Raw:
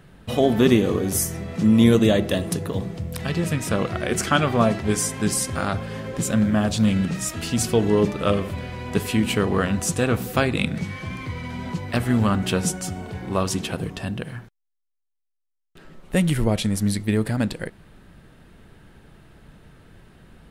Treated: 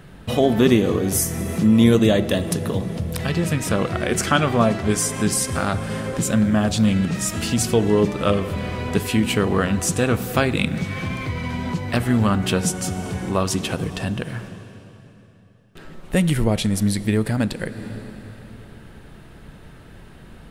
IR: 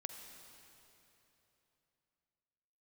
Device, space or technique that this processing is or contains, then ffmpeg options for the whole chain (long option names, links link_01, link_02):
ducked reverb: -filter_complex "[0:a]asplit=3[link_01][link_02][link_03];[1:a]atrim=start_sample=2205[link_04];[link_02][link_04]afir=irnorm=-1:irlink=0[link_05];[link_03]apad=whole_len=904418[link_06];[link_05][link_06]sidechaincompress=threshold=-29dB:ratio=8:attack=9.6:release=296,volume=3dB[link_07];[link_01][link_07]amix=inputs=2:normalize=0"